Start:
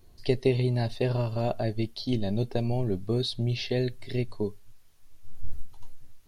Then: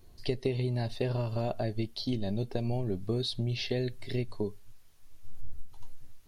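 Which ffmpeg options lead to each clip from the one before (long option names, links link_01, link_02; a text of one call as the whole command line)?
ffmpeg -i in.wav -af "acompressor=threshold=-28dB:ratio=3" out.wav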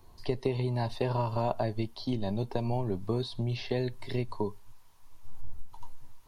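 ffmpeg -i in.wav -filter_complex "[0:a]equalizer=frequency=960:width=2.7:gain=14.5,acrossover=split=160|1800[link_01][link_02][link_03];[link_03]alimiter=level_in=9.5dB:limit=-24dB:level=0:latency=1:release=99,volume=-9.5dB[link_04];[link_01][link_02][link_04]amix=inputs=3:normalize=0" out.wav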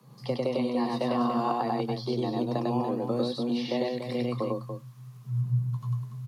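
ffmpeg -i in.wav -af "aecho=1:1:99.13|288.6:0.891|0.398,afreqshift=120" out.wav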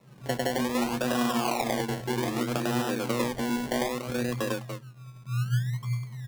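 ffmpeg -i in.wav -af "acrusher=samples=28:mix=1:aa=0.000001:lfo=1:lforange=16.8:lforate=0.63" out.wav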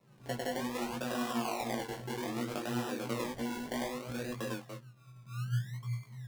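ffmpeg -i in.wav -af "flanger=delay=17:depth=2.7:speed=2.9,volume=-5dB" out.wav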